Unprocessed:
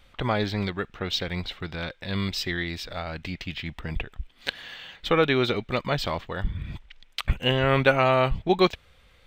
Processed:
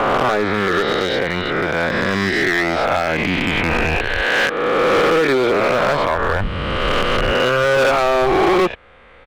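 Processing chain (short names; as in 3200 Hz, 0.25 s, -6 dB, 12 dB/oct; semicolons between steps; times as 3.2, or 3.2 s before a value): spectral swells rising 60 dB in 2.30 s; recorder AGC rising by 6.7 dB/s; three-band isolator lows -13 dB, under 250 Hz, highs -20 dB, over 2300 Hz; downsampling 22050 Hz; in parallel at -2 dB: compressor, threshold -27 dBFS, peak gain reduction 14 dB; on the sum: bell 5400 Hz -3.5 dB 0.99 oct; overloaded stage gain 19 dB; gain +7 dB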